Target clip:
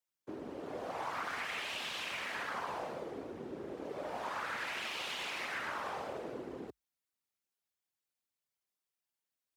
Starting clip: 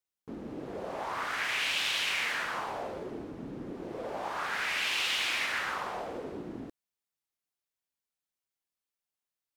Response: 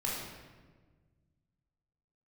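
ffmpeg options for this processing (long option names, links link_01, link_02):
-filter_complex "[0:a]afftfilt=real='hypot(re,im)*cos(2*PI*random(0))':imag='hypot(re,im)*sin(2*PI*random(1))':win_size=512:overlap=0.75,afreqshift=47,acrossover=split=280|1100[link_01][link_02][link_03];[link_01]acompressor=threshold=-57dB:ratio=4[link_04];[link_02]acompressor=threshold=-45dB:ratio=4[link_05];[link_03]acompressor=threshold=-46dB:ratio=4[link_06];[link_04][link_05][link_06]amix=inputs=3:normalize=0,volume=5dB"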